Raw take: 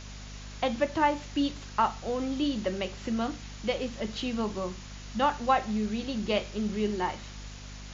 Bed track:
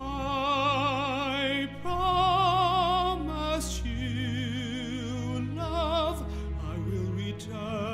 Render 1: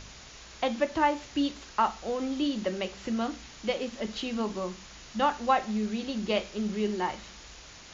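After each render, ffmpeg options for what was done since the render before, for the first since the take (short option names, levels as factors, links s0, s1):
-af "bandreject=f=50:t=h:w=4,bandreject=f=100:t=h:w=4,bandreject=f=150:t=h:w=4,bandreject=f=200:t=h:w=4,bandreject=f=250:t=h:w=4"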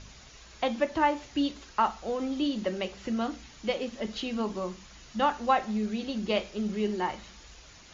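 -af "afftdn=nr=6:nf=-49"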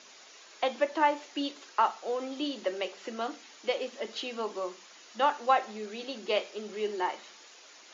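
-af "highpass=f=330:w=0.5412,highpass=f=330:w=1.3066"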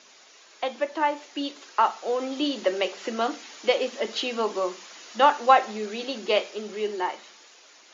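-af "dynaudnorm=f=360:g=11:m=2.82"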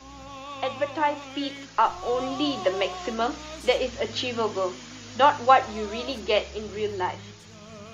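-filter_complex "[1:a]volume=0.266[s0];[0:a][s0]amix=inputs=2:normalize=0"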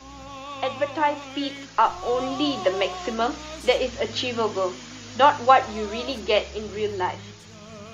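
-af "volume=1.26,alimiter=limit=0.708:level=0:latency=1"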